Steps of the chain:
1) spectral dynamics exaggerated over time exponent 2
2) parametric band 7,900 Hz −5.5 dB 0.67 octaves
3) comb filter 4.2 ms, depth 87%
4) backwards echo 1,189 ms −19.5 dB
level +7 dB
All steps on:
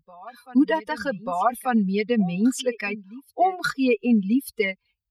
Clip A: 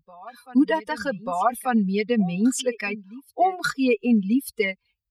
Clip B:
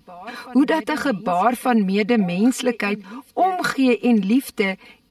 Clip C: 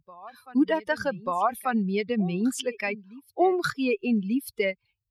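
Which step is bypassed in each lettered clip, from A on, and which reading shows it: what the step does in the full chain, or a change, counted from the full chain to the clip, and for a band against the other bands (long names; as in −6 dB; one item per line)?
2, 8 kHz band +4.0 dB
1, change in integrated loudness +3.5 LU
3, 250 Hz band −1.5 dB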